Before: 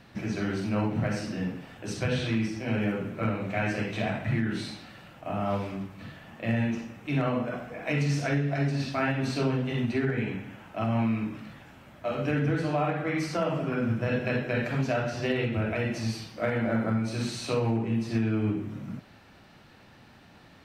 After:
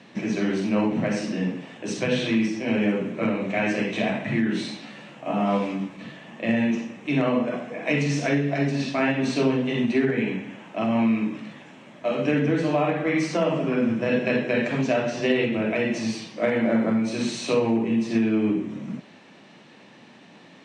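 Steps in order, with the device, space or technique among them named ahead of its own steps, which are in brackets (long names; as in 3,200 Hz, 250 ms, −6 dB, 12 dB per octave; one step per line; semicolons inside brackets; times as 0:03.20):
television speaker (loudspeaker in its box 170–7,900 Hz, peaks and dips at 770 Hz −4 dB, 1,400 Hz −9 dB, 4,700 Hz −6 dB)
0:04.81–0:05.97: double-tracking delay 14 ms −4 dB
level +7 dB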